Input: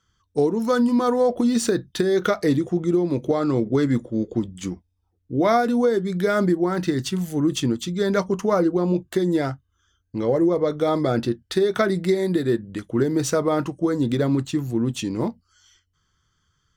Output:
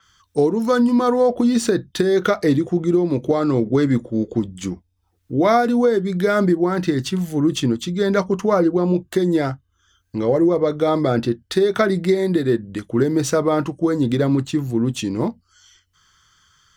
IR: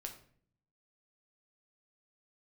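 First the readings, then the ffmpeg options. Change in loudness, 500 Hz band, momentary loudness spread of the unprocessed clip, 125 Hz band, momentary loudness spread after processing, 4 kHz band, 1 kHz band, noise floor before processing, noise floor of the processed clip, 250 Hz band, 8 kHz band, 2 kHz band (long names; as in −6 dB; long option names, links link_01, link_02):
+3.0 dB, +3.0 dB, 7 LU, +3.0 dB, 7 LU, +2.5 dB, +3.0 dB, −71 dBFS, −67 dBFS, +3.0 dB, +1.0 dB, +3.0 dB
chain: -filter_complex "[0:a]acrossover=split=860[link_01][link_02];[link_02]acompressor=mode=upward:threshold=-49dB:ratio=2.5[link_03];[link_01][link_03]amix=inputs=2:normalize=0,adynamicequalizer=threshold=0.00631:dfrequency=4900:dqfactor=0.7:tfrequency=4900:tqfactor=0.7:attack=5:release=100:ratio=0.375:range=2:mode=cutabove:tftype=highshelf,volume=3dB"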